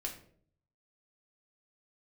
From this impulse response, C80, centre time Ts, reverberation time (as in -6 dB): 13.0 dB, 18 ms, 0.55 s